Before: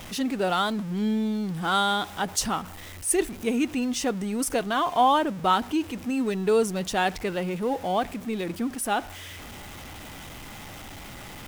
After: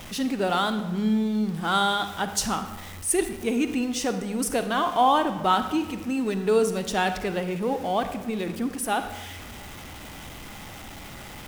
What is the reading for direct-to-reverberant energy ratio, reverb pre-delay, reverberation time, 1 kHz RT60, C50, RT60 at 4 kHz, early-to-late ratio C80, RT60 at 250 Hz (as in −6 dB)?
9.0 dB, 38 ms, 1.2 s, 1.2 s, 10.0 dB, 0.75 s, 11.5 dB, 1.3 s